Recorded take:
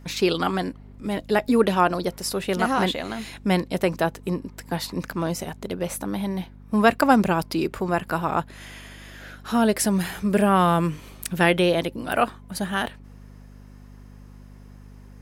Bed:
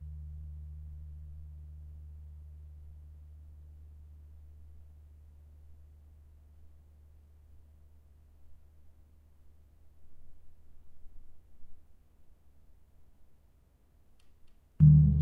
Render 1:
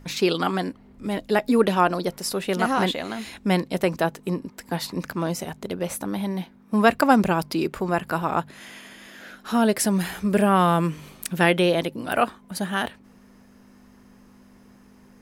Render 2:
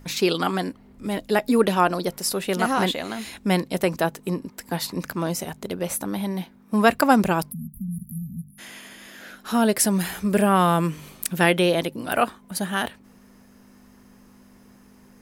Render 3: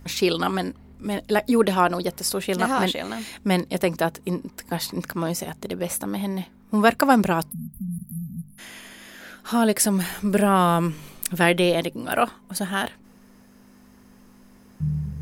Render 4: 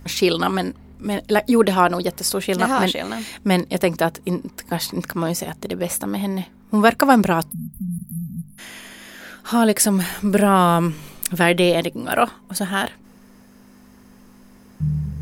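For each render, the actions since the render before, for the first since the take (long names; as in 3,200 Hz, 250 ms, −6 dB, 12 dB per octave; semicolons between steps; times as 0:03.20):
hum removal 50 Hz, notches 3
0:07.51–0:08.58: time-frequency box erased 240–9,600 Hz; high-shelf EQ 7,300 Hz +7 dB
mix in bed −6.5 dB
level +3.5 dB; brickwall limiter −1 dBFS, peak gain reduction 2 dB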